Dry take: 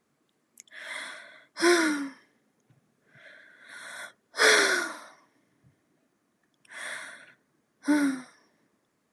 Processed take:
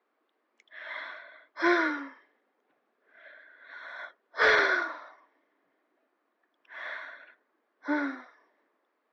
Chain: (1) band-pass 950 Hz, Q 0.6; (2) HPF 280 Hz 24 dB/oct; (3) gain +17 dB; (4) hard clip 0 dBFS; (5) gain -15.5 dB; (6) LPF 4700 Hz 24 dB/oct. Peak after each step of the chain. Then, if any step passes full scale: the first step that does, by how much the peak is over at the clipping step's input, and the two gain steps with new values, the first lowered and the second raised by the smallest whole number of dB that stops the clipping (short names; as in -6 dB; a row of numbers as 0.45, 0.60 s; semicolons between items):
-10.0, -10.0, +7.0, 0.0, -15.5, -14.0 dBFS; step 3, 7.0 dB; step 3 +10 dB, step 5 -8.5 dB